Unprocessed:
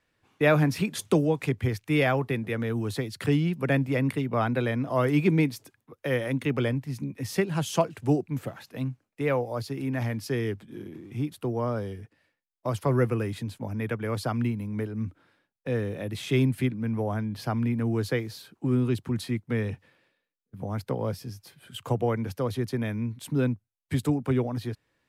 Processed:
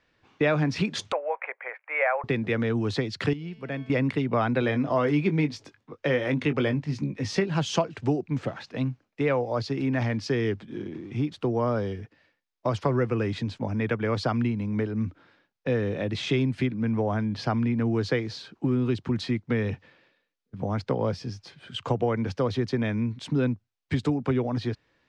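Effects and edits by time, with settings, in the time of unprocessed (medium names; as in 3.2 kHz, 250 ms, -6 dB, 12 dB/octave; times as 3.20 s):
1.12–2.24 s: Chebyshev band-pass 540–2300 Hz, order 4
3.33–3.90 s: feedback comb 220 Hz, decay 1.4 s, mix 80%
4.60–7.48 s: doubling 20 ms -9 dB
whole clip: compression 4:1, threshold -26 dBFS; low-pass 5.9 kHz 24 dB/octave; peaking EQ 110 Hz -2.5 dB 1.2 oct; trim +5.5 dB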